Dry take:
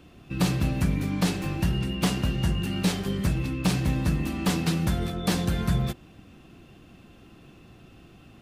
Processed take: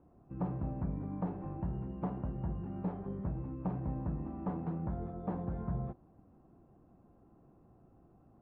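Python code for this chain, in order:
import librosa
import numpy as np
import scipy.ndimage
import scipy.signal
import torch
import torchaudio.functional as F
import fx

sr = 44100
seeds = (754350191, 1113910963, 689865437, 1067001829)

y = fx.ladder_lowpass(x, sr, hz=1100.0, resonance_pct=35)
y = F.gain(torch.from_numpy(y), -4.5).numpy()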